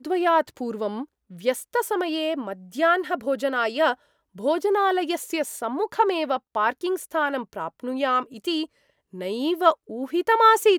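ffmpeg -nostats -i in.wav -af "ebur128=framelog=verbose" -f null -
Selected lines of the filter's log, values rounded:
Integrated loudness:
  I:         -24.1 LUFS
  Threshold: -34.4 LUFS
Loudness range:
  LRA:         2.0 LU
  Threshold: -45.0 LUFS
  LRA low:   -26.0 LUFS
  LRA high:  -24.0 LUFS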